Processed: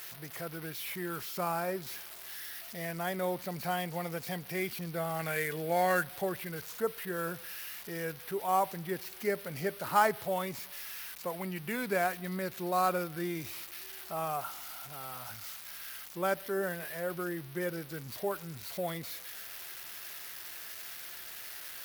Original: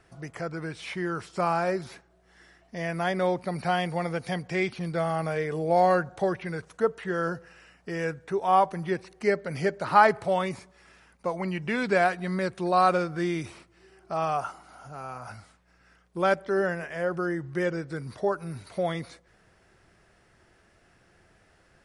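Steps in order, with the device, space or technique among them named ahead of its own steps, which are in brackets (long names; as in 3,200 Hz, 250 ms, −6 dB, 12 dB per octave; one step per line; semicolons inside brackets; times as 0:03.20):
0:05.19–0:06.08: flat-topped bell 2,400 Hz +10 dB
budget class-D amplifier (gap after every zero crossing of 0.064 ms; spike at every zero crossing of −21.5 dBFS)
level −7.5 dB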